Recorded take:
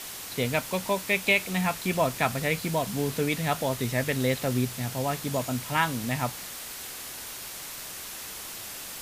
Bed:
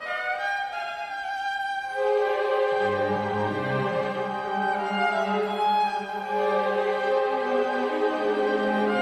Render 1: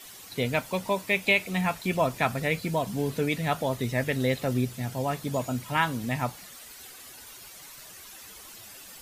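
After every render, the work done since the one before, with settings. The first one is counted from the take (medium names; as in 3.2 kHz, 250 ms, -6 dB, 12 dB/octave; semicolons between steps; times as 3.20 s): noise reduction 11 dB, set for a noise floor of -40 dBFS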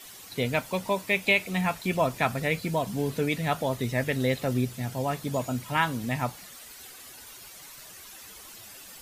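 no audible change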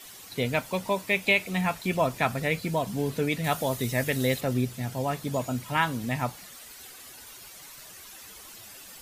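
3.44–4.41 s: treble shelf 5.6 kHz +9.5 dB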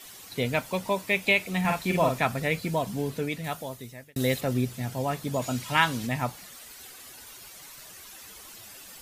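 1.60–2.20 s: doubling 48 ms -3 dB; 2.82–4.16 s: fade out; 5.42–6.07 s: peaking EQ 4.3 kHz +7 dB 2.7 oct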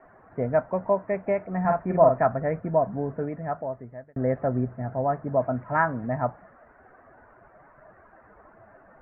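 steep low-pass 1.7 kHz 48 dB/octave; peaking EQ 650 Hz +10 dB 0.35 oct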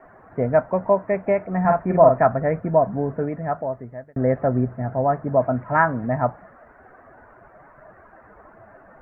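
trim +5 dB; peak limiter -3 dBFS, peak gain reduction 1.5 dB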